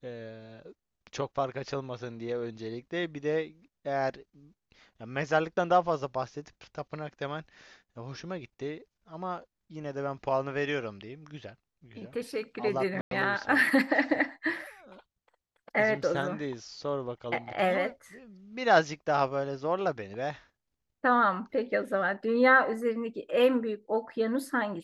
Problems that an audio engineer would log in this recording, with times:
13.01–13.11 gap 0.102 s

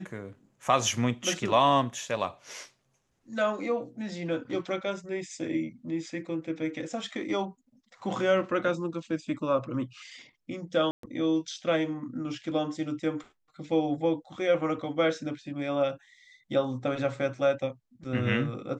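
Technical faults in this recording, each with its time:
10.91–11.03 gap 0.123 s

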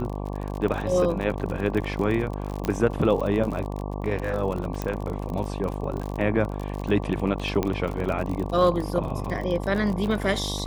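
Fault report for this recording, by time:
buzz 50 Hz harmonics 23 -31 dBFS
crackle 46/s -29 dBFS
2.65 pop -12 dBFS
4.82 pop -15 dBFS
7.63 pop -12 dBFS

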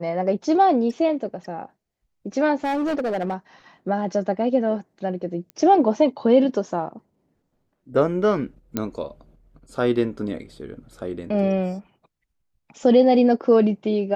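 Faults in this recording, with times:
2.64–3.34 clipped -20.5 dBFS
5.5 pop -23 dBFS
8.77 pop -10 dBFS

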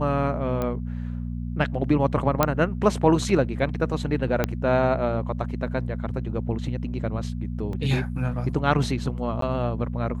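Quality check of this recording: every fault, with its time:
hum 60 Hz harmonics 4 -30 dBFS
0.62 pop -15 dBFS
2.43 pop -4 dBFS
4.44 pop -8 dBFS
7.73 gap 2.2 ms
9.41–9.42 gap 13 ms

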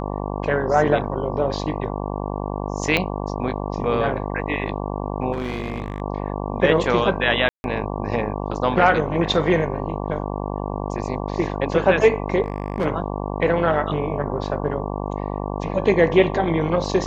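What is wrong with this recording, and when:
buzz 50 Hz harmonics 23 -27 dBFS
2.97 pop -6 dBFS
5.32–6.02 clipped -21 dBFS
7.49–7.64 gap 0.151 s
12.42–12.86 clipped -17.5 dBFS

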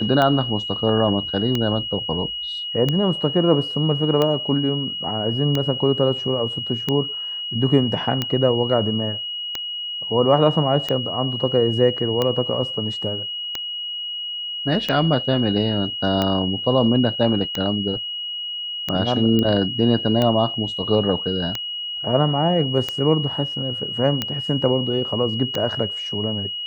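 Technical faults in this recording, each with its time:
tick 45 rpm -8 dBFS
tone 2900 Hz -26 dBFS
19.39 pop -9 dBFS

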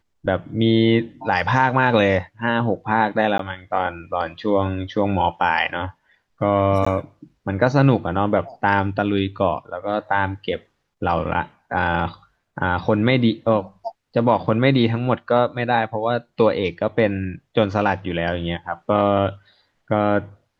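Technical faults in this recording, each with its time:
3.38–3.39 gap 13 ms
6.85–6.87 gap 15 ms

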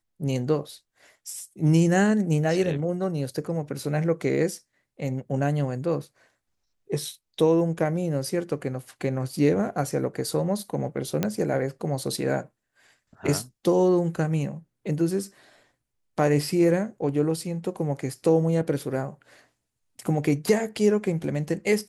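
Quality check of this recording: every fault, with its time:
11.23 pop -10 dBFS

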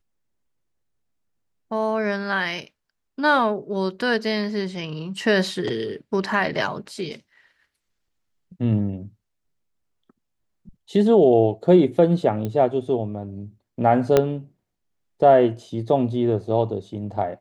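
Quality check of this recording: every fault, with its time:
12.45 pop -16 dBFS
14.17 pop -4 dBFS

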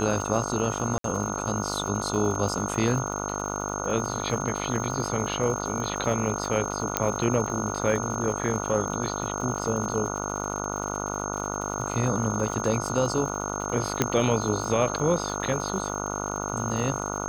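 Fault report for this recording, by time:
buzz 50 Hz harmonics 29 -32 dBFS
crackle 160/s -34 dBFS
tone 6400 Hz -34 dBFS
0.98–1.04 gap 63 ms
6.97 pop -4 dBFS
14.02 pop -6 dBFS

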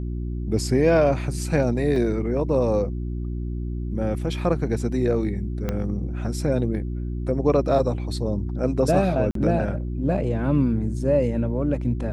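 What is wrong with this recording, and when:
hum 60 Hz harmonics 6 -28 dBFS
1.96 gap 2.4 ms
5.69 pop -13 dBFS
9.31–9.35 gap 43 ms

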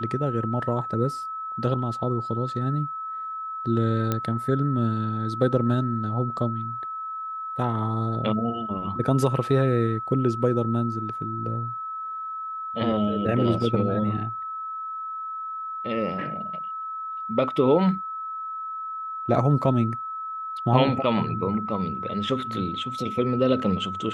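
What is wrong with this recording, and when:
tone 1300 Hz -30 dBFS
4.12 pop -11 dBFS

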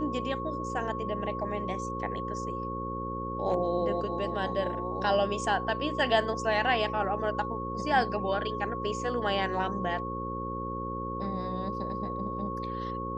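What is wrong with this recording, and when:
buzz 60 Hz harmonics 9 -37 dBFS
tone 1100 Hz -35 dBFS

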